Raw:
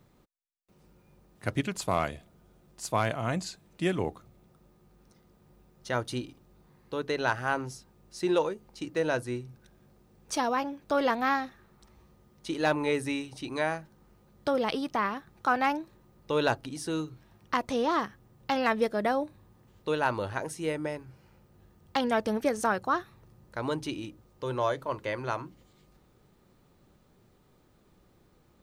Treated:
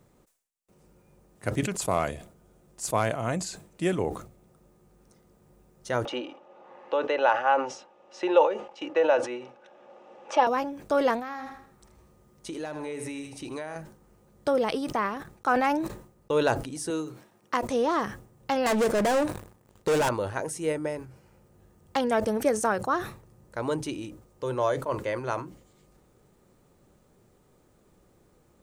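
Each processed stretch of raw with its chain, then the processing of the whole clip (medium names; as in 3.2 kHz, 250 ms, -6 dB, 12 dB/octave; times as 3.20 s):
6.05–10.47 s: cabinet simulation 450–4700 Hz, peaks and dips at 550 Hz +7 dB, 820 Hz +9 dB, 1.2 kHz +4 dB, 2.8 kHz +7 dB, 4.5 kHz -9 dB + comb 3.5 ms, depth 36% + three bands compressed up and down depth 40%
11.19–13.76 s: feedback delay 79 ms, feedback 41%, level -13 dB + compression 10:1, threshold -33 dBFS
15.16–16.38 s: gate -49 dBFS, range -43 dB + decay stretcher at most 43 dB/s
16.90–17.63 s: expander -58 dBFS + high-pass 210 Hz
18.66–20.09 s: waveshaping leveller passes 3 + hard clipper -24 dBFS
whole clip: graphic EQ 500/4000/8000 Hz +4/-4/+7 dB; decay stretcher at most 110 dB/s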